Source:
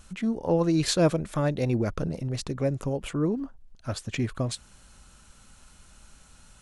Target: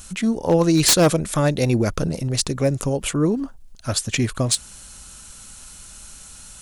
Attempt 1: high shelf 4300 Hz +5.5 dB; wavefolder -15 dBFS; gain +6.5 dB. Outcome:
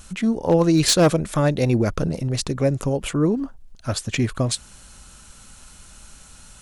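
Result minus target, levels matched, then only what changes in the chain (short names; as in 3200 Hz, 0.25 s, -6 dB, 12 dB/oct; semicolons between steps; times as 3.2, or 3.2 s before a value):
8000 Hz band -4.0 dB
change: high shelf 4300 Hz +14 dB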